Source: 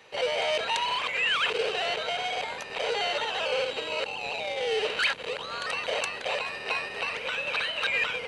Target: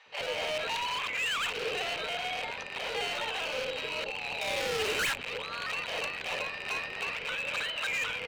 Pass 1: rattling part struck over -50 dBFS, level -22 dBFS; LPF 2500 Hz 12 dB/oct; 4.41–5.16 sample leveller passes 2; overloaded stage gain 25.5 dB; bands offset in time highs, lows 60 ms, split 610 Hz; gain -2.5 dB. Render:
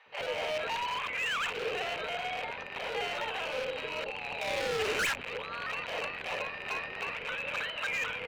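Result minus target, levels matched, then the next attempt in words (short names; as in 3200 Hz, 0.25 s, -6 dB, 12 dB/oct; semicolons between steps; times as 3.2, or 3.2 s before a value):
4000 Hz band -2.5 dB
rattling part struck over -50 dBFS, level -22 dBFS; LPF 5200 Hz 12 dB/oct; 4.41–5.16 sample leveller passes 2; overloaded stage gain 25.5 dB; bands offset in time highs, lows 60 ms, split 610 Hz; gain -2.5 dB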